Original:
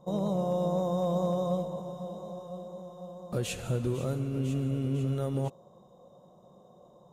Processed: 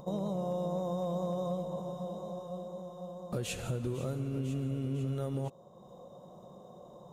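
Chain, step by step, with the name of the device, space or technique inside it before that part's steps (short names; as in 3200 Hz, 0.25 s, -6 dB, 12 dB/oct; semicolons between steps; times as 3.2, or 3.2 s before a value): upward and downward compression (upward compressor, threshold -44 dBFS; compressor 3:1, threshold -32 dBFS, peak gain reduction 6 dB)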